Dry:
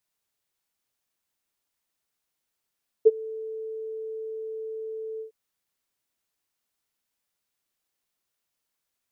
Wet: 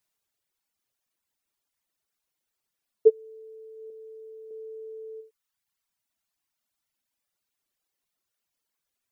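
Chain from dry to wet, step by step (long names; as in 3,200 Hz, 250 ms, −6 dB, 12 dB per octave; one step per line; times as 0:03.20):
reverb reduction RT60 1.7 s
0:03.90–0:04.51: low-shelf EQ 320 Hz −11.5 dB
level +1.5 dB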